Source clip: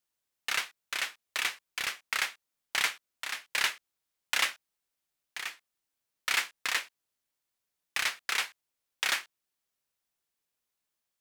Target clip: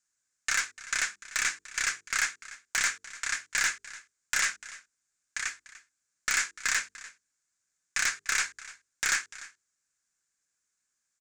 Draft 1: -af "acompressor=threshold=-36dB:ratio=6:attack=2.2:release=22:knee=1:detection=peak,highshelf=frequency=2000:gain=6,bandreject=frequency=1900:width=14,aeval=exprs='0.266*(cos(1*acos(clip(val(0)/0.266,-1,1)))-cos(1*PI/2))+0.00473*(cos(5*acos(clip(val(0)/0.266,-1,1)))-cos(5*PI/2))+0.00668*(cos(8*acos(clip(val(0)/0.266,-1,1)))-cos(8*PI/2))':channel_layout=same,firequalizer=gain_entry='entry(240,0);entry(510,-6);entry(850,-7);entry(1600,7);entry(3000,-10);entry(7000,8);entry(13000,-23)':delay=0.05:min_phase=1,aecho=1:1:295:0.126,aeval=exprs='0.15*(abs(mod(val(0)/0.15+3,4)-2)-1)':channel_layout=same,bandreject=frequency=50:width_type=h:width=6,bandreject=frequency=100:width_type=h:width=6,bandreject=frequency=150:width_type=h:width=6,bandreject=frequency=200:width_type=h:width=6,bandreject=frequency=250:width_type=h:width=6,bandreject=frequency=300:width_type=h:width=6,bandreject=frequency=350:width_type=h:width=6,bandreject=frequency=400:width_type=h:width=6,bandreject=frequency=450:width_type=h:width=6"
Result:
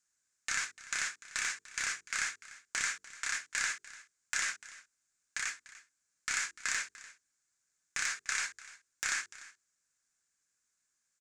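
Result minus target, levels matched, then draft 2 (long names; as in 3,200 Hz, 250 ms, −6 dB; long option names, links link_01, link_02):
downward compressor: peak gain reduction +8 dB
-af "acompressor=threshold=-26.5dB:ratio=6:attack=2.2:release=22:knee=1:detection=peak,highshelf=frequency=2000:gain=6,bandreject=frequency=1900:width=14,aeval=exprs='0.266*(cos(1*acos(clip(val(0)/0.266,-1,1)))-cos(1*PI/2))+0.00473*(cos(5*acos(clip(val(0)/0.266,-1,1)))-cos(5*PI/2))+0.00668*(cos(8*acos(clip(val(0)/0.266,-1,1)))-cos(8*PI/2))':channel_layout=same,firequalizer=gain_entry='entry(240,0);entry(510,-6);entry(850,-7);entry(1600,7);entry(3000,-10);entry(7000,8);entry(13000,-23)':delay=0.05:min_phase=1,aecho=1:1:295:0.126,aeval=exprs='0.15*(abs(mod(val(0)/0.15+3,4)-2)-1)':channel_layout=same,bandreject=frequency=50:width_type=h:width=6,bandreject=frequency=100:width_type=h:width=6,bandreject=frequency=150:width_type=h:width=6,bandreject=frequency=200:width_type=h:width=6,bandreject=frequency=250:width_type=h:width=6,bandreject=frequency=300:width_type=h:width=6,bandreject=frequency=350:width_type=h:width=6,bandreject=frequency=400:width_type=h:width=6,bandreject=frequency=450:width_type=h:width=6"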